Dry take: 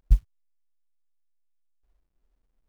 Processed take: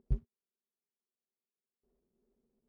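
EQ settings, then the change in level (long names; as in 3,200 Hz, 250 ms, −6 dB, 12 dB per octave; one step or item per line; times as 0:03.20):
pair of resonant band-passes 300 Hz, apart 0.7 octaves
+13.5 dB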